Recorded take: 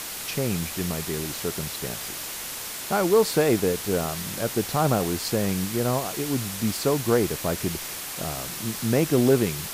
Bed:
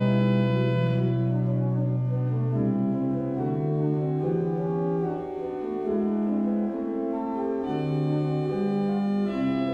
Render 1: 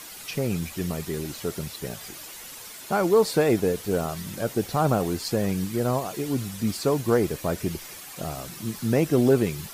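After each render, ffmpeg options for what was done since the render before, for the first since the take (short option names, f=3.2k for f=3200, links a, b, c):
-af "afftdn=nr=10:nf=-35"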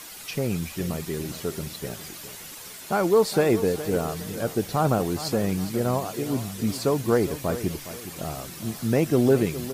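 -af "aecho=1:1:413|826|1239|1652:0.211|0.0782|0.0289|0.0107"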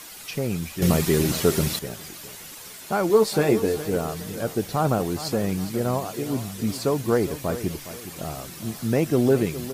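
-filter_complex "[0:a]asettb=1/sr,asplit=3[a][b][c];[a]atrim=end=3.084[d];[b]atrim=start=3.08:end=3.85,asetpts=PTS-STARTPTS,afade=t=in:d=0.004:c=qsin,afade=t=out:st=0.766:d=0.004:c=qsin,asplit=2[e][f];[f]adelay=14,volume=-5dB[g];[e][g]amix=inputs=2:normalize=0,atrim=end_sample=33957[h];[c]atrim=start=3.846[i];[d][h]acrossfade=d=0.004:c1=hsin:c2=qsin[j];[j][i]acrossfade=d=0.004:c1=qsin:c2=hsin,asplit=3[k][l][m];[k]atrim=end=0.822[n];[l]atrim=start=0.818:end=1.792,asetpts=PTS-STARTPTS,volume=10dB[o];[m]atrim=start=1.788[p];[n][o]acrossfade=d=0.004:c1=hsin:c2=hsin[q];[q][p]acrossfade=d=0.004:c1=hsin:c2=hsin"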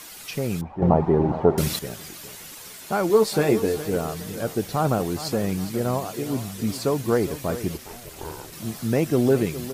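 -filter_complex "[0:a]asettb=1/sr,asplit=3[a][b][c];[a]atrim=end=0.614[d];[b]atrim=start=0.61:end=1.58,asetpts=PTS-STARTPTS,afade=t=in:d=0.004:c=qsin,afade=t=out:st=0.966:d=0.004:c=qsin,lowpass=f=840:t=q:w=4.9[e];[c]atrim=start=1.576[f];[d][e]acrossfade=d=0.004:c1=hsin:c2=qsin[g];[g][f]acrossfade=d=0.004:c1=qsin:c2=hsin,asplit=3[h][i][j];[h]afade=t=out:st=7.77:d=0.02[k];[i]aeval=exprs='val(0)*sin(2*PI*240*n/s)':c=same,afade=t=in:st=7.77:d=0.02,afade=t=out:st=8.51:d=0.02[l];[j]afade=t=in:st=8.51:d=0.02[m];[k][l][m]amix=inputs=3:normalize=0"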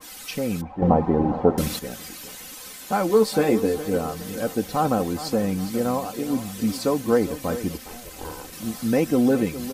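-af "aecho=1:1:3.9:0.59,adynamicequalizer=threshold=0.0158:dfrequency=1600:dqfactor=0.7:tfrequency=1600:tqfactor=0.7:attack=5:release=100:ratio=0.375:range=2:mode=cutabove:tftype=highshelf"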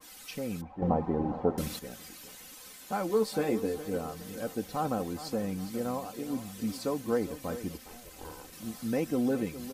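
-af "volume=-9.5dB"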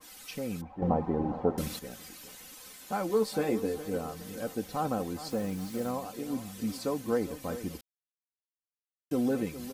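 -filter_complex "[0:a]asettb=1/sr,asplit=3[a][b][c];[a]atrim=end=5.304[d];[b]atrim=start=5.3:end=5.91,asetpts=PTS-STARTPTS,afade=t=in:d=0.004:c=qsin,afade=t=out:st=0.606:d=0.004:c=qsin,acrusher=bits=7:mix=0:aa=0.5[e];[c]atrim=start=5.906[f];[d][e]acrossfade=d=0.004:c1=hsin:c2=qsin[g];[g][f]acrossfade=d=0.004:c1=qsin:c2=hsin,asplit=3[h][i][j];[h]atrim=end=7.81,asetpts=PTS-STARTPTS,afade=t=out:st=7.806:d=0.004:c=hsin[k];[i]atrim=start=7.81:end=9.11,asetpts=PTS-STARTPTS,volume=0[l];[j]atrim=start=9.11,asetpts=PTS-STARTPTS,afade=t=in:d=0.004:c=hsin[m];[k][l][m]concat=n=3:v=0:a=1"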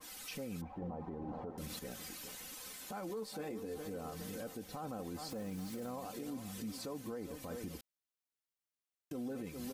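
-af "acompressor=threshold=-39dB:ratio=3,alimiter=level_in=11dB:limit=-24dB:level=0:latency=1:release=22,volume=-11dB"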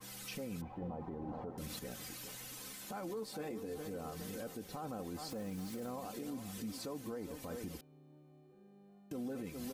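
-filter_complex "[1:a]volume=-36dB[a];[0:a][a]amix=inputs=2:normalize=0"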